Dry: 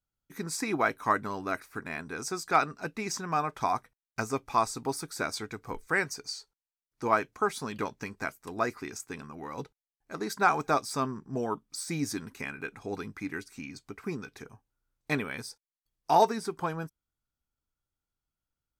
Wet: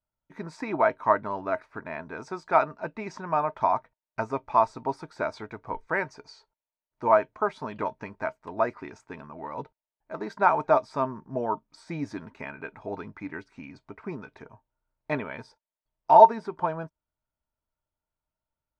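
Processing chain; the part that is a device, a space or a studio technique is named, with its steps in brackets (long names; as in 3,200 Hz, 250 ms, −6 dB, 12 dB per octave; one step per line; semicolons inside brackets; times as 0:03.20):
inside a cardboard box (low-pass filter 2,600 Hz 12 dB per octave; hollow resonant body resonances 630/910 Hz, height 14 dB, ringing for 45 ms)
level −1 dB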